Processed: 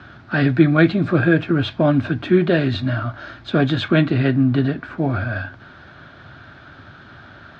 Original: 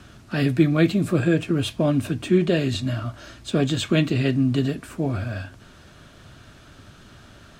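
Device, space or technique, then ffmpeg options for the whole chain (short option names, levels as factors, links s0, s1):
guitar cabinet: -filter_complex "[0:a]asettb=1/sr,asplit=3[s0][s1][s2];[s0]atrim=end=3.884[s3];[s1]atrim=start=3.88:end=4.98,asetpts=PTS-STARTPTS,afade=t=in:d=0.004:c=qsin,afade=t=out:st=1.096:d=0.004:c=qsin,highshelf=f=4400:g=-5.5[s4];[s2]atrim=start=4.976[s5];[s3][s4]acrossfade=d=0.004:c1=hsin:c2=qsin[s6];[s6][s5]acrossfade=d=0.004:c1=qsin:c2=hsin,highpass=81,equalizer=f=200:t=q:w=4:g=-4,equalizer=f=450:t=q:w=4:g=-4,equalizer=f=800:t=q:w=4:g=4,equalizer=f=1500:t=q:w=4:g=8,equalizer=f=2800:t=q:w=4:g=-6,lowpass=f=3900:w=0.5412,lowpass=f=3900:w=1.3066,volume=1.78"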